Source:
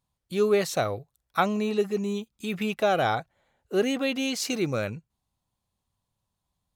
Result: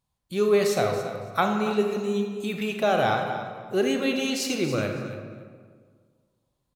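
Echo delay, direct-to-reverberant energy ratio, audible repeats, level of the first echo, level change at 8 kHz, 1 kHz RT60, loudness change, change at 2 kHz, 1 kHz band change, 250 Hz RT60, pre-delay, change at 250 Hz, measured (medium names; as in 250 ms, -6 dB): 279 ms, 3.0 dB, 2, -13.0 dB, +1.0 dB, 1.7 s, +1.5 dB, +2.0 dB, +2.0 dB, 2.0 s, 30 ms, +1.5 dB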